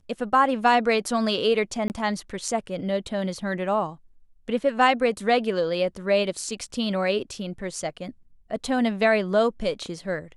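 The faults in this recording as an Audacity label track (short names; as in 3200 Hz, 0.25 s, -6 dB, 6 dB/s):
1.880000	1.900000	gap 19 ms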